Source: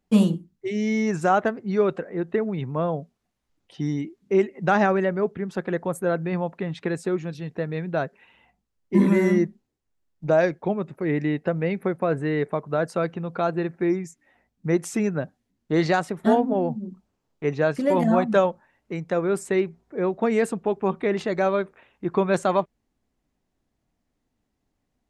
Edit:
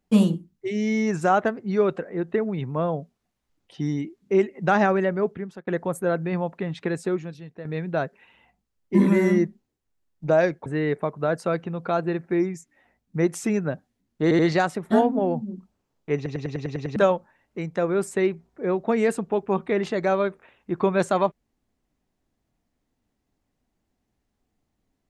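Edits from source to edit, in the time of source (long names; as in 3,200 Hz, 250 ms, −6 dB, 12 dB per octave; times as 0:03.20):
0:05.31–0:05.67: fade out
0:07.12–0:07.65: fade out quadratic, to −10.5 dB
0:10.66–0:12.16: remove
0:15.73: stutter 0.08 s, 3 plays
0:17.50: stutter in place 0.10 s, 8 plays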